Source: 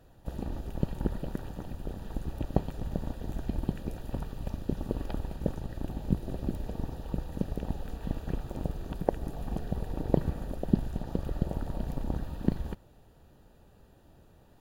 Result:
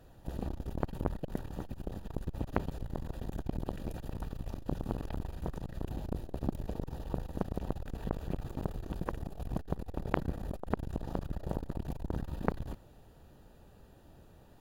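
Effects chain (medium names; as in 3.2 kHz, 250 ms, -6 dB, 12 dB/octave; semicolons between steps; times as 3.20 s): transformer saturation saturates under 1.3 kHz; trim +1 dB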